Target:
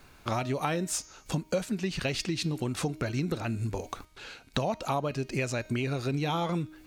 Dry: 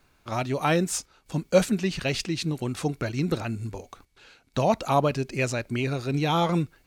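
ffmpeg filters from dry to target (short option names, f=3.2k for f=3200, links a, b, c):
-af "bandreject=f=311.5:t=h:w=4,bandreject=f=623:t=h:w=4,bandreject=f=934.5:t=h:w=4,bandreject=f=1.246k:t=h:w=4,bandreject=f=1.5575k:t=h:w=4,bandreject=f=1.869k:t=h:w=4,bandreject=f=2.1805k:t=h:w=4,bandreject=f=2.492k:t=h:w=4,bandreject=f=2.8035k:t=h:w=4,bandreject=f=3.115k:t=h:w=4,bandreject=f=3.4265k:t=h:w=4,bandreject=f=3.738k:t=h:w=4,bandreject=f=4.0495k:t=h:w=4,bandreject=f=4.361k:t=h:w=4,bandreject=f=4.6725k:t=h:w=4,bandreject=f=4.984k:t=h:w=4,bandreject=f=5.2955k:t=h:w=4,bandreject=f=5.607k:t=h:w=4,bandreject=f=5.9185k:t=h:w=4,bandreject=f=6.23k:t=h:w=4,bandreject=f=6.5415k:t=h:w=4,bandreject=f=6.853k:t=h:w=4,acompressor=threshold=-36dB:ratio=6,volume=8dB"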